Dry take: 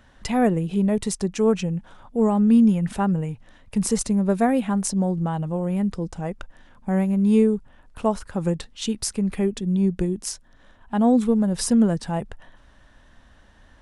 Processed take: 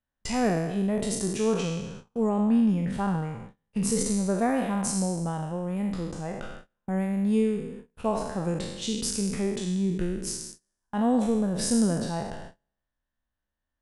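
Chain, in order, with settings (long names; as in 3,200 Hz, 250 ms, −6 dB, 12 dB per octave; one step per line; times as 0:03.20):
peak hold with a decay on every bin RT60 1.12 s
noise gate −34 dBFS, range −30 dB
0:02.29–0:03.83: high-shelf EQ 6,600 Hz −10 dB
level −6.5 dB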